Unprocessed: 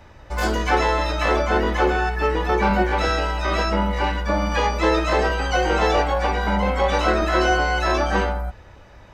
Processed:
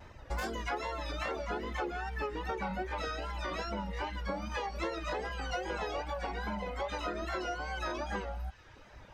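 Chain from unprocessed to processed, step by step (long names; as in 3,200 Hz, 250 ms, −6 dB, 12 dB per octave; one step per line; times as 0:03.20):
downward compressor 6 to 1, threshold −27 dBFS, peak gain reduction 13 dB
reverb reduction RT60 1 s
pitch vibrato 2.5 Hz 80 cents
delay with a high-pass on its return 189 ms, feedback 82%, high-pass 1,700 Hz, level −20.5 dB
level −4.5 dB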